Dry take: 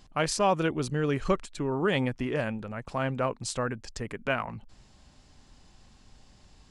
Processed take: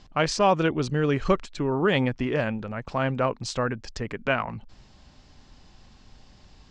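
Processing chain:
low-pass filter 6,300 Hz 24 dB per octave
level +4 dB

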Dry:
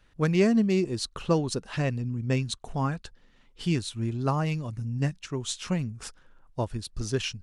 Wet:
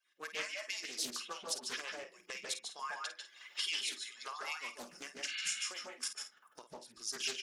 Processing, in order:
harmonic-percussive split with one part muted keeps percussive
camcorder AGC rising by 39 dB per second
0:02.72–0:04.42: meter weighting curve A
0:05.30–0:05.50: healed spectral selection 220–4,800 Hz before
first difference
0:05.72–0:06.90: output level in coarse steps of 16 dB
double-tracking delay 50 ms −10 dB
convolution reverb RT60 0.25 s, pre-delay 145 ms, DRR 1 dB
highs frequency-modulated by the lows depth 0.43 ms
level −5.5 dB

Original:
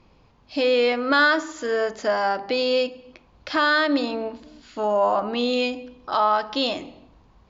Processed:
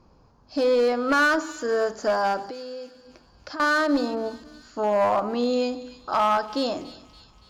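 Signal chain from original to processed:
flat-topped bell 2,700 Hz −11.5 dB 1.2 octaves
0:02.47–0:03.60: downward compressor 4 to 1, threshold −37 dBFS, peak gain reduction 15.5 dB
asymmetric clip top −17.5 dBFS
delay with a high-pass on its return 284 ms, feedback 56%, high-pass 2,800 Hz, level −13 dB

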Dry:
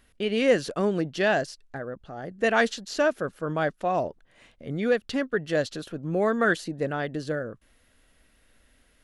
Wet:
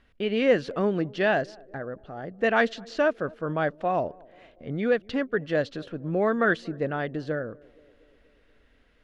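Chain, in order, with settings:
low-pass filter 3,400 Hz 12 dB per octave
on a send: feedback echo with a band-pass in the loop 238 ms, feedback 66%, band-pass 400 Hz, level −23.5 dB

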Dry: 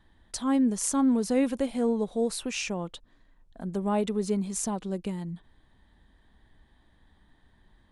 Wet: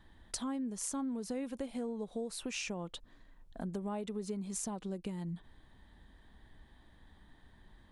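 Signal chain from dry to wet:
downward compressor 6 to 1, threshold −38 dBFS, peak gain reduction 17 dB
level +1.5 dB

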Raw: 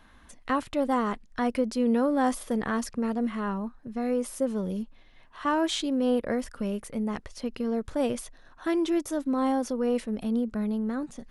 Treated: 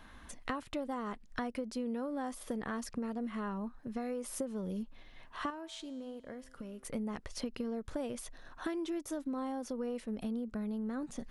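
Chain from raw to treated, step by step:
0:03.81–0:04.24: low-shelf EQ 390 Hz −5 dB
downward compressor 10 to 1, threshold −36 dBFS, peak gain reduction 16.5 dB
0:05.50–0:06.85: tuned comb filter 130 Hz, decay 1.8 s, mix 60%
level +1.5 dB

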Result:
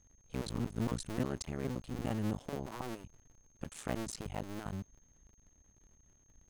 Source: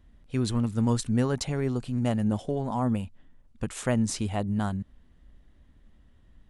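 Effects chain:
sub-harmonics by changed cycles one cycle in 2, muted
steady tone 6,400 Hz −60 dBFS
level −8 dB

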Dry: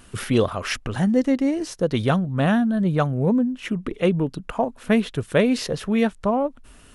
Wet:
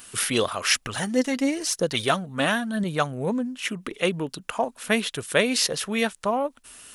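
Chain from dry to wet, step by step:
spectral tilt +3.5 dB per octave
0:00.81–0:02.84: phase shifter 1 Hz, delay 4.9 ms, feedback 43%

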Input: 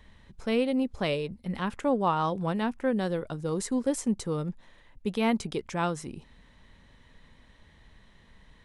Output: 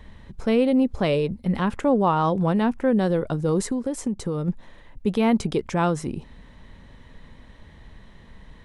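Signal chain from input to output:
tilt shelving filter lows +3.5 dB, about 1,300 Hz
in parallel at +2 dB: brickwall limiter −23 dBFS, peak gain reduction 11 dB
0:03.62–0:04.48: on the sum: downward compressor 6 to 1, threshold −23 dBFS, peak gain reduction 8 dB

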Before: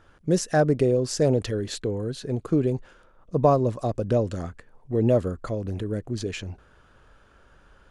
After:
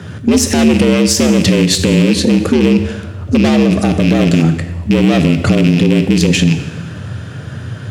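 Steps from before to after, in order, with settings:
loose part that buzzes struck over −32 dBFS, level −23 dBFS
high-shelf EQ 4,700 Hz −7.5 dB
tube saturation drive 25 dB, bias 0.55
downward compressor, threshold −36 dBFS, peak gain reduction 10.5 dB
parametric band 860 Hz −13.5 dB 2.9 octaves
coupled-rooms reverb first 0.95 s, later 2.7 s, DRR 8 dB
frequency shifter +75 Hz
boost into a limiter +36 dB
level −1 dB

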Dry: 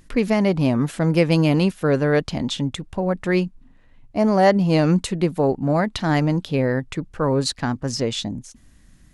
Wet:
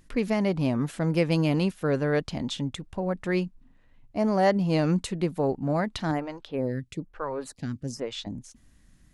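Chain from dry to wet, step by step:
0:06.11–0:08.27: phaser with staggered stages 1.1 Hz
level −6.5 dB

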